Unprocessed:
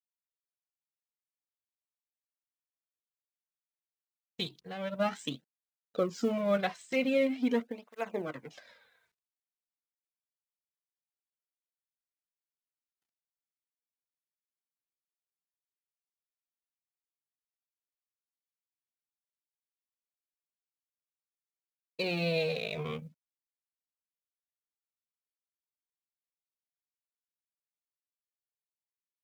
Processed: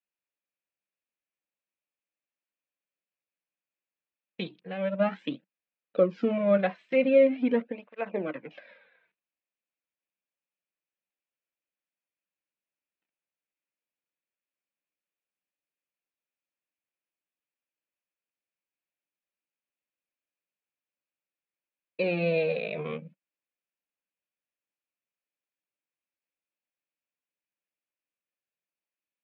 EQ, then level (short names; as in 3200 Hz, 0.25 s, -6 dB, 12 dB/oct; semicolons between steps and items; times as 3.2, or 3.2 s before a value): speaker cabinet 160–3300 Hz, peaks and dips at 190 Hz +8 dB, 310 Hz +7 dB, 550 Hz +9 dB, 1700 Hz +4 dB, 2500 Hz +10 dB; dynamic EQ 2600 Hz, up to -7 dB, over -44 dBFS, Q 1.9; 0.0 dB